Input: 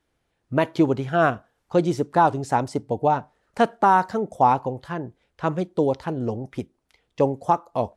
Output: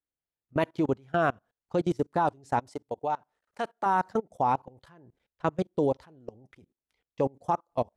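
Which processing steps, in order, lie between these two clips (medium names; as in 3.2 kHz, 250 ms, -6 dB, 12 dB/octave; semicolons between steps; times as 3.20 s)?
level held to a coarse grid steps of 23 dB; 2.69–3.86 s: bass shelf 330 Hz -12 dB; upward expansion 1.5:1, over -38 dBFS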